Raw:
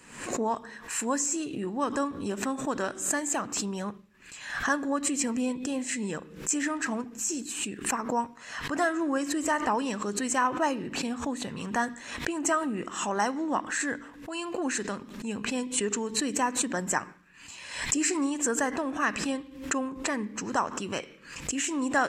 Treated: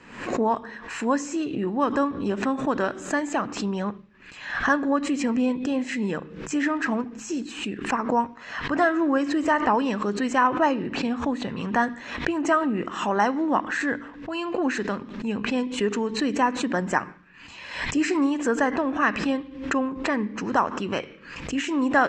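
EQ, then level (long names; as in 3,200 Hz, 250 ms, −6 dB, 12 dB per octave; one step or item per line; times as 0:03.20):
high-frequency loss of the air 190 metres
mains-hum notches 50/100/150 Hz
+6.5 dB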